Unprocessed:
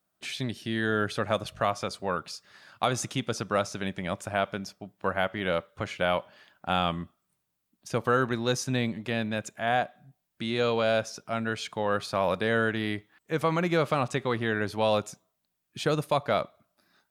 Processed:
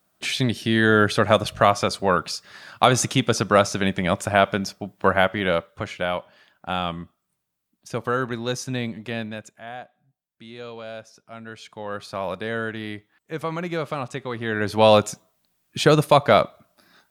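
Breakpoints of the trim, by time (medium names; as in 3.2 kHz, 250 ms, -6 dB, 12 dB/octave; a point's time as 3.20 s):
5.09 s +10 dB
6.13 s +0.5 dB
9.19 s +0.5 dB
9.73 s -11 dB
11.14 s -11 dB
12.16 s -2 dB
14.33 s -2 dB
14.84 s +10.5 dB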